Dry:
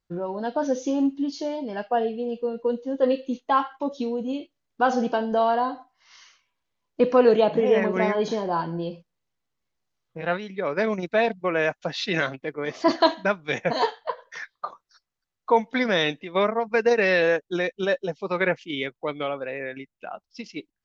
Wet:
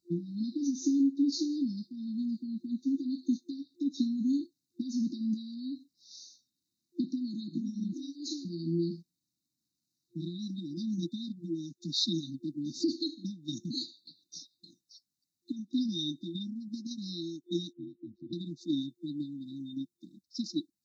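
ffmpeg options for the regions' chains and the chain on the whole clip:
-filter_complex "[0:a]asettb=1/sr,asplit=3[s0][s1][s2];[s0]atrim=end=7.934[s3];[s1]atrim=start=7.93:end=8.45,asetpts=PTS-STARTPTS,afade=t=in:d=0.004:c=qsin,afade=t=out:st=0.516:d=0.004:c=qsin,highpass=320,afreqshift=77[s4];[s2]atrim=start=8.446[s5];[s3][s4]acrossfade=d=0.004:c1=hsin:c2=qsin[s6];[s6][s5]acrossfade=d=0.004:c1=qsin:c2=hsin,asettb=1/sr,asplit=3[s7][s8][s9];[s7]atrim=end=17.734[s10];[s8]atrim=start=17.73:end=18.33,asetpts=PTS-STARTPTS,afade=t=in:d=0.004:c=qsin,afade=t=out:st=0.596:d=0.004:c=qsin,aeval=exprs='val(0)*sin(2*PI*54*n/s)':c=same,lowpass=1100,acompressor=threshold=0.00891:ratio=4:attack=3.2:release=140:knee=1:detection=peak[s11];[s9]atrim=start=18.326[s12];[s10][s11]acrossfade=d=0.004:c1=hsin:c2=qsin[s13];[s13][s12]acrossfade=d=0.004:c1=qsin:c2=hsin,acompressor=threshold=0.0447:ratio=6,highpass=170,afftfilt=real='re*(1-between(b*sr/4096,350,3600))':imag='im*(1-between(b*sr/4096,350,3600))':win_size=4096:overlap=0.75,volume=1.68"

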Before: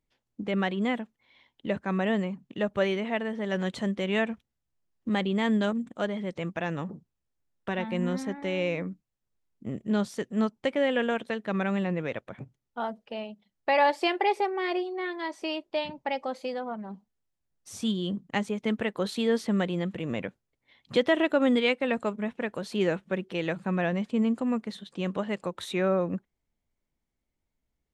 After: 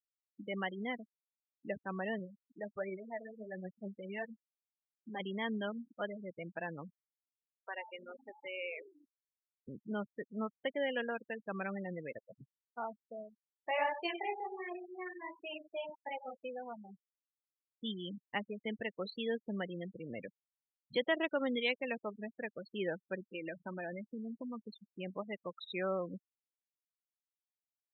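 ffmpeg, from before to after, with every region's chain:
-filter_complex "[0:a]asettb=1/sr,asplit=3[s0][s1][s2];[s0]atrim=end=2.194[s3];[s1]atrim=start=2.19:end=5.2,asetpts=PTS-STARTPTS,afade=t=in:d=0.004:c=qsin,afade=t=out:st=3.006:d=0.004:c=qsin,highshelf=f=3200:g=-8,flanger=delay=4.6:depth=8.3:regen=42:speed=1.4:shape=triangular[s4];[s2]atrim=start=5.196[s5];[s3][s4]acrossfade=d=0.004:c1=hsin:c2=qsin[s6];[s6][s5]acrossfade=d=0.004:c1=qsin:c2=hsin,asettb=1/sr,asplit=3[s7][s8][s9];[s7]atrim=end=6.904[s10];[s8]atrim=start=6.9:end=9.68,asetpts=PTS-STARTPTS,afade=t=in:d=0.004:c=qsin,afade=t=out:st=2.776:d=0.004:c=qsin,highpass=600,lowpass=6400,asplit=9[s11][s12][s13][s14][s15][s16][s17][s18][s19];[s12]adelay=173,afreqshift=-120,volume=0.251[s20];[s13]adelay=346,afreqshift=-240,volume=0.164[s21];[s14]adelay=519,afreqshift=-360,volume=0.106[s22];[s15]adelay=692,afreqshift=-480,volume=0.0692[s23];[s16]adelay=865,afreqshift=-600,volume=0.0447[s24];[s17]adelay=1038,afreqshift=-720,volume=0.0292[s25];[s18]adelay=1211,afreqshift=-840,volume=0.0188[s26];[s19]adelay=1384,afreqshift=-960,volume=0.0123[s27];[s11][s20][s21][s22][s23][s24][s25][s26][s27]amix=inputs=9:normalize=0,atrim=end_sample=122598[s28];[s9]atrim=start=9.676[s29];[s10][s28]acrossfade=d=0.004:c1=hsin:c2=qsin[s30];[s30][s29]acrossfade=d=0.004:c1=qsin:c2=hsin,asettb=1/sr,asplit=3[s31][s32][s33];[s31]atrim=end=13.294[s34];[s32]atrim=start=13.29:end=16.35,asetpts=PTS-STARTPTS,afade=t=in:d=0.004:c=qsin,afade=t=out:st=3.056:d=0.004:c=qsin,flanger=delay=17:depth=7.9:speed=1.4,aecho=1:1:95:0.335,atrim=end_sample=134946[s35];[s33]atrim=start=16.346[s36];[s34][s35]acrossfade=d=0.004:c1=hsin:c2=qsin[s37];[s37][s36]acrossfade=d=0.004:c1=qsin:c2=hsin,asettb=1/sr,asplit=3[s38][s39][s40];[s38]atrim=end=23.334[s41];[s39]atrim=start=23.33:end=24.6,asetpts=PTS-STARTPTS,afade=t=in:d=0.004:c=qsin,afade=t=out:st=1.266:d=0.004:c=qsin,aecho=1:1:3.3:0.32,atrim=end_sample=56007,acompressor=threshold=0.0501:ratio=12:attack=3.2:release=140:knee=1:detection=peak[s42];[s40]atrim=start=24.596[s43];[s41][s42]acrossfade=d=0.004:c1=hsin:c2=qsin[s44];[s44][s43]acrossfade=d=0.004:c1=qsin:c2=hsin,adynamicequalizer=threshold=0.0112:dfrequency=1000:dqfactor=1:tfrequency=1000:tqfactor=1:attack=5:release=100:ratio=0.375:range=2:mode=cutabove:tftype=bell,afftfilt=real='re*gte(hypot(re,im),0.0447)':imag='im*gte(hypot(re,im),0.0447)':win_size=1024:overlap=0.75,lowshelf=f=450:g=-10.5,volume=0.562"

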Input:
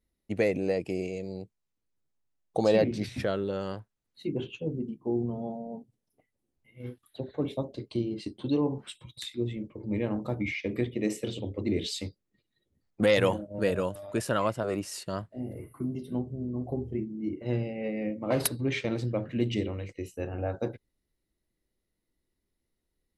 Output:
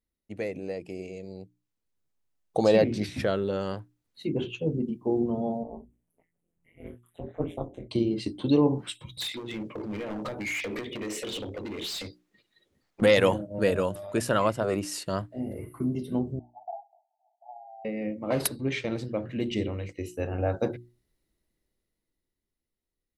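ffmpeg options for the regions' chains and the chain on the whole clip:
-filter_complex "[0:a]asettb=1/sr,asplit=3[s0][s1][s2];[s0]atrim=end=5.634[s3];[s1]atrim=start=5.63:end=7.91,asetpts=PTS-STARTPTS,afade=t=in:d=0.004:c=qsin,afade=t=out:st=2.276:d=0.004:c=qsin,flanger=delay=19:depth=5:speed=1.6,tremolo=f=170:d=0.974,asuperstop=centerf=4600:order=4:qfactor=1.2[s4];[s2]atrim=start=7.906[s5];[s3][s4]acrossfade=d=0.004:c1=hsin:c2=qsin[s6];[s6][s5]acrossfade=d=0.004:c1=qsin:c2=hsin,asettb=1/sr,asplit=3[s7][s8][s9];[s7]atrim=end=9.204[s10];[s8]atrim=start=9.2:end=13.02,asetpts=PTS-STARTPTS,afade=t=in:d=0.004:c=qsin,afade=t=out:st=3.816:d=0.004:c=qsin,acompressor=threshold=0.0158:ratio=8:attack=3.2:release=140:knee=1:detection=peak,asplit=2[s11][s12];[s12]highpass=f=720:p=1,volume=6.31,asoftclip=type=tanh:threshold=0.0531[s13];[s11][s13]amix=inputs=2:normalize=0,lowpass=f=4400:p=1,volume=0.501,asoftclip=type=hard:threshold=0.0158[s14];[s9]atrim=start=13.016[s15];[s10][s14]acrossfade=d=0.004:c1=hsin:c2=qsin[s16];[s16][s15]acrossfade=d=0.004:c1=qsin:c2=hsin,asettb=1/sr,asplit=3[s17][s18][s19];[s17]atrim=end=16.394[s20];[s18]atrim=start=16.39:end=17.85,asetpts=PTS-STARTPTS,afade=t=in:d=0.004:c=qsin,afade=t=out:st=1.456:d=0.004:c=qsin,acontrast=70,asuperpass=centerf=770:order=12:qfactor=3.4[s21];[s19]atrim=start=17.846[s22];[s20][s21]acrossfade=d=0.004:c1=hsin:c2=qsin[s23];[s23][s22]acrossfade=d=0.004:c1=qsin:c2=hsin,bandreject=f=60:t=h:w=6,bandreject=f=120:t=h:w=6,bandreject=f=180:t=h:w=6,bandreject=f=240:t=h:w=6,bandreject=f=300:t=h:w=6,bandreject=f=360:t=h:w=6,dynaudnorm=f=110:g=31:m=5.01,volume=0.447"

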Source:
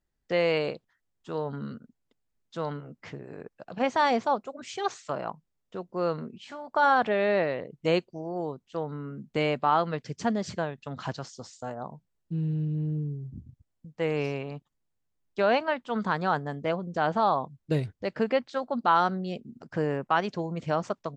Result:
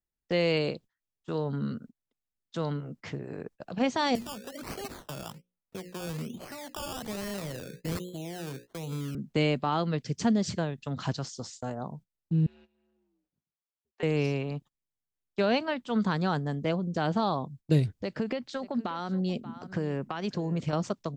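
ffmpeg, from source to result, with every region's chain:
-filter_complex "[0:a]asettb=1/sr,asplit=3[s0][s1][s2];[s0]atrim=end=4.154[s3];[s1]atrim=start=4.15:end=9.15,asetpts=PTS-STARTPTS,afade=t=in:d=0.004:c=qsin,afade=t=out:st=4.996:d=0.004:c=qsin,bandreject=f=60:t=h:w=6,bandreject=f=120:t=h:w=6,bandreject=f=180:t=h:w=6,bandreject=f=240:t=h:w=6,bandreject=f=300:t=h:w=6,bandreject=f=360:t=h:w=6,bandreject=f=420:t=h:w=6,bandreject=f=480:t=h:w=6,bandreject=f=540:t=h:w=6,acrossover=split=160|3000[s4][s5][s6];[s5]acompressor=threshold=0.0112:ratio=6:attack=3.2:release=140:knee=2.83:detection=peak[s7];[s4][s7][s6]amix=inputs=3:normalize=0,acrusher=samples=17:mix=1:aa=0.000001:lfo=1:lforange=10.2:lforate=1.2[s8];[s2]atrim=start=9.146[s9];[s3][s8]acrossfade=d=0.004:c1=hsin:c2=qsin[s10];[s10][s9]acrossfade=d=0.004:c1=qsin:c2=hsin,asettb=1/sr,asplit=3[s11][s12][s13];[s11]atrim=end=12.464[s14];[s12]atrim=start=12.46:end=14.03,asetpts=PTS-STARTPTS,afade=t=in:d=0.004:c=qsin,afade=t=out:st=1.566:d=0.004:c=qsin,acompressor=threshold=0.0251:ratio=2.5:attack=3.2:release=140:knee=1:detection=peak,afreqshift=-92,highpass=690,lowpass=6000[s15];[s13]atrim=start=14.026[s16];[s14][s15]acrossfade=d=0.004:c1=hsin:c2=qsin[s17];[s17][s16]acrossfade=d=0.004:c1=qsin:c2=hsin,asettb=1/sr,asplit=3[s18][s19][s20];[s18]atrim=end=17.914[s21];[s19]atrim=start=17.91:end=20.73,asetpts=PTS-STARTPTS,afade=t=in:d=0.004:c=qsin,afade=t=out:st=2.816:d=0.004:c=qsin,acompressor=threshold=0.0398:ratio=5:attack=3.2:release=140:knee=1:detection=peak,aecho=1:1:583:0.133,atrim=end_sample=124362[s22];[s20]atrim=start=20.726[s23];[s21][s22]acrossfade=d=0.004:c1=hsin:c2=qsin[s24];[s24][s23]acrossfade=d=0.004:c1=qsin:c2=hsin,acrossover=split=360|3000[s25][s26][s27];[s26]acompressor=threshold=0.00178:ratio=1.5[s28];[s25][s28][s27]amix=inputs=3:normalize=0,agate=range=0.141:threshold=0.00251:ratio=16:detection=peak,volume=1.78"

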